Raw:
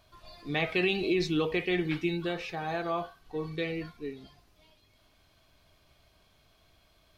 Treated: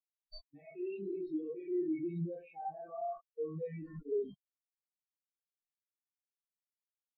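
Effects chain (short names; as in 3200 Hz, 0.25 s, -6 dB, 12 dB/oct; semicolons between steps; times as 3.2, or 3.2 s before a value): reverse; compressor 16:1, threshold -40 dBFS, peak gain reduction 17.5 dB; reverse; Schroeder reverb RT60 0.4 s, combs from 28 ms, DRR -3 dB; transient shaper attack -10 dB, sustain +8 dB; level quantiser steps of 23 dB; spectral expander 4:1; gain +7 dB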